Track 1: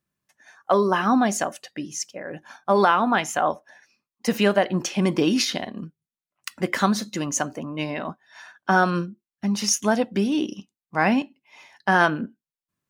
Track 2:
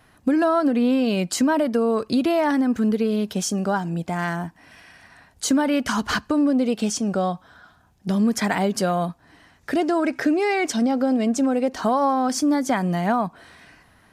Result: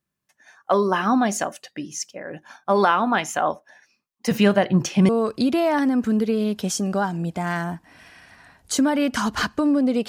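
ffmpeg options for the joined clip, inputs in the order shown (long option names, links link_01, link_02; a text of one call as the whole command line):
ffmpeg -i cue0.wav -i cue1.wav -filter_complex "[0:a]asettb=1/sr,asplit=3[link_01][link_02][link_03];[link_01]atrim=end=4.314[link_04];[link_02]atrim=start=4.31:end=5.09,asetpts=PTS-STARTPTS,afade=type=in:duration=0.004:curve=qsin,afade=type=out:start_time=0.776:duration=0.004:curve=qsin,equalizer=frequency=130:width_type=o:width=0.97:gain=13.5[link_05];[link_03]atrim=start=5.086[link_06];[link_04][link_05]acrossfade=duration=0.004:curve1=hsin:curve2=qsin[link_07];[link_07][link_06]acrossfade=duration=0.004:curve1=qsin:curve2=hsin,apad=whole_dur=10.08,atrim=end=10.08,atrim=end=5.092[link_08];[1:a]atrim=start=1.808:end=6.8[link_09];[link_08][link_09]acrossfade=duration=0.004:curve1=hsin:curve2=hsin" out.wav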